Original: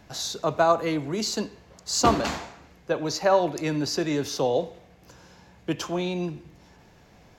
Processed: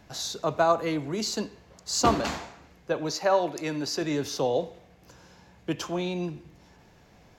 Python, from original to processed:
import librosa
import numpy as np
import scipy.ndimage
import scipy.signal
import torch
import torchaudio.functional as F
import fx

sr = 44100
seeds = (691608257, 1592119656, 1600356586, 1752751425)

y = fx.low_shelf(x, sr, hz=160.0, db=-10.0, at=(3.1, 4.02))
y = F.gain(torch.from_numpy(y), -2.0).numpy()